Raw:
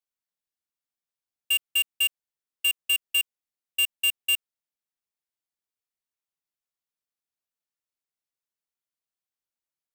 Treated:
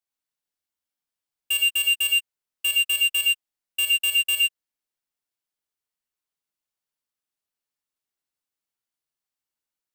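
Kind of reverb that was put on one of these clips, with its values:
reverb whose tail is shaped and stops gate 140 ms rising, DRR 1 dB

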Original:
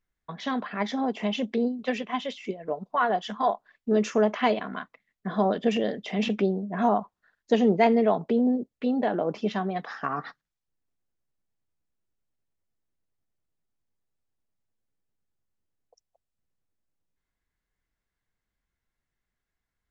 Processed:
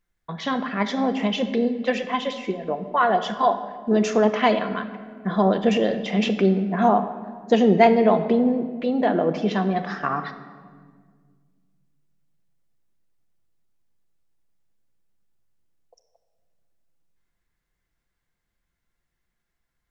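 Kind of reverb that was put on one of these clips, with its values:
rectangular room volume 2,300 cubic metres, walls mixed, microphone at 0.83 metres
level +4.5 dB

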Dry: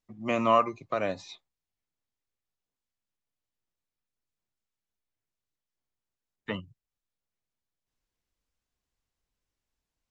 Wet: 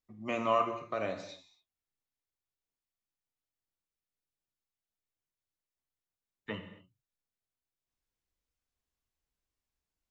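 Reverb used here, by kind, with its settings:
reverb whose tail is shaped and stops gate 300 ms falling, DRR 5 dB
level −6 dB

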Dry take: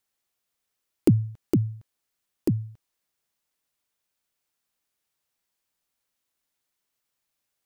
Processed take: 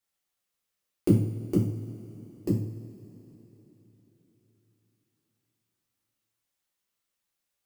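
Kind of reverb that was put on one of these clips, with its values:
coupled-rooms reverb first 0.48 s, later 4 s, from −19 dB, DRR −6 dB
level −9 dB

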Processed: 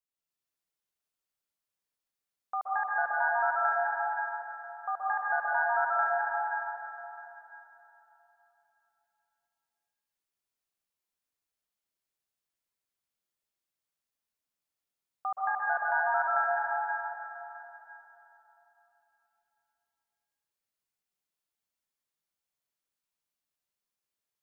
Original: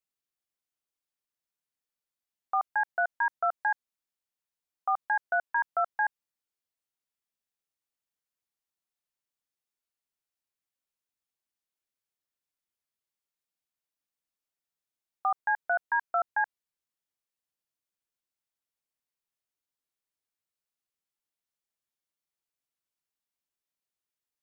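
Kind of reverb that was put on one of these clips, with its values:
dense smooth reverb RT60 3.4 s, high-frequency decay 0.9×, pre-delay 115 ms, DRR −6.5 dB
level −6 dB

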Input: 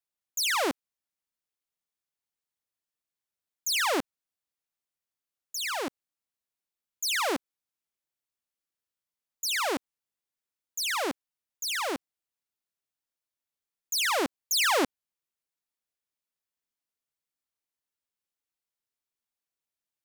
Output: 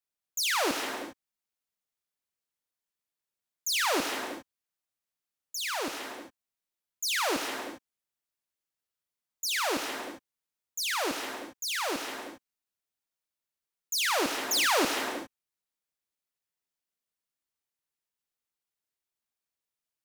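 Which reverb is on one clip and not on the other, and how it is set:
reverb whose tail is shaped and stops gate 430 ms flat, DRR 4 dB
level −1.5 dB

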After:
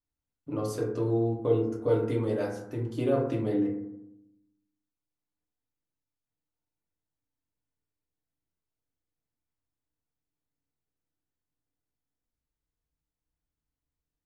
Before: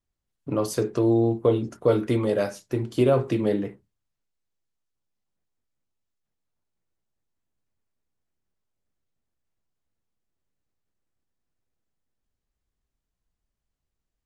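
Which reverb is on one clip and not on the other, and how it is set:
feedback delay network reverb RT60 0.85 s, low-frequency decay 1.35×, high-frequency decay 0.3×, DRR −2 dB
level −11 dB

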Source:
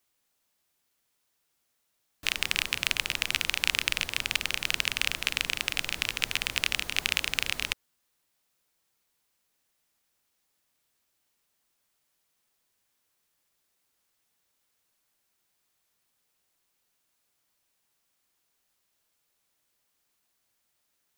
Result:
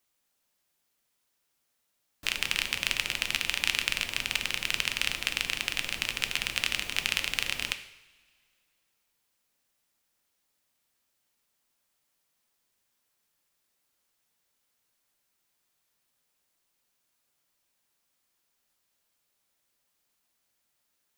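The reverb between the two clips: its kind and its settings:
coupled-rooms reverb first 0.74 s, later 2.4 s, from −19 dB, DRR 8 dB
level −1.5 dB

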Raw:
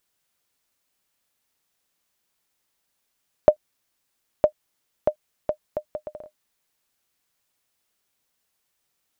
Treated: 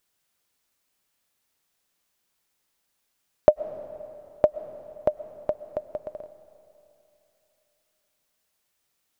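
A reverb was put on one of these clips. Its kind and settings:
comb and all-pass reverb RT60 3 s, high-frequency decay 0.95×, pre-delay 80 ms, DRR 14 dB

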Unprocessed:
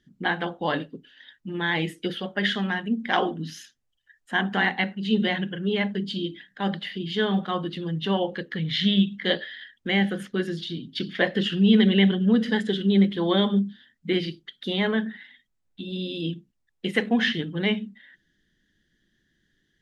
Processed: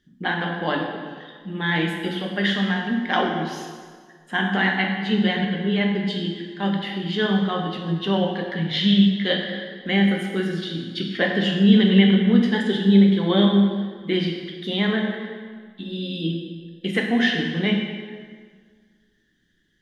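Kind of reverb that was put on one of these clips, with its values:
dense smooth reverb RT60 1.7 s, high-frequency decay 0.8×, DRR 1 dB

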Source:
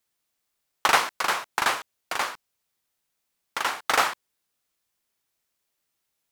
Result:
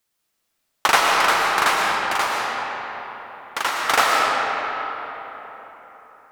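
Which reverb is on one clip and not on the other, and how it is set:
comb and all-pass reverb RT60 4.2 s, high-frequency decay 0.55×, pre-delay 75 ms, DRR −2.5 dB
level +3 dB

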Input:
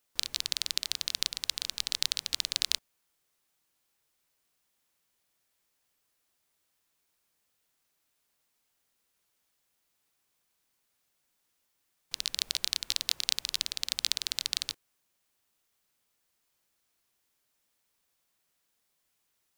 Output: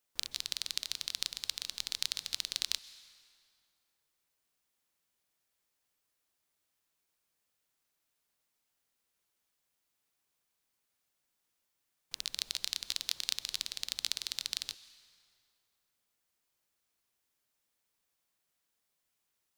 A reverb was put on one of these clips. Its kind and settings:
dense smooth reverb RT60 2.5 s, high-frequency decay 0.7×, pre-delay 115 ms, DRR 16.5 dB
level −5 dB

